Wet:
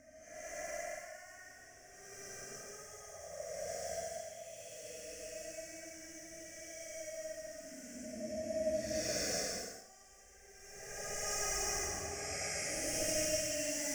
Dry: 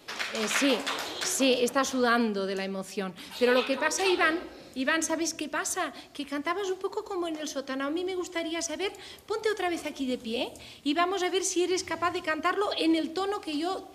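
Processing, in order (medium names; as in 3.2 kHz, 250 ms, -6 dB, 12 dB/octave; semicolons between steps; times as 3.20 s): in parallel at -3 dB: integer overflow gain 28 dB; on the sum: inverted gate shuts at -19 dBFS, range -30 dB; FFT filter 160 Hz 0 dB, 230 Hz -3 dB, 340 Hz -25 dB, 630 Hz +5 dB, 930 Hz -27 dB, 1.9 kHz +1 dB, 4 kHz -27 dB, 5.7 kHz +9 dB, 12 kHz -8 dB; compression 8:1, threshold -50 dBFS, peak gain reduction 24.5 dB; Paulstretch 12×, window 0.10 s, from 12.39 s; trim +15 dB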